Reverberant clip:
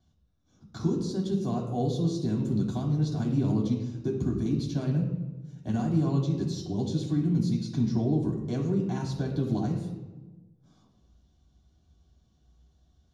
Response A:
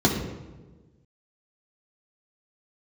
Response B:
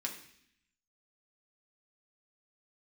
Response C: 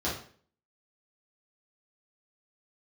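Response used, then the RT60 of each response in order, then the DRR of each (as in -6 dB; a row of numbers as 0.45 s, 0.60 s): A; 1.3 s, 0.65 s, 0.50 s; -3.0 dB, -0.5 dB, -8.0 dB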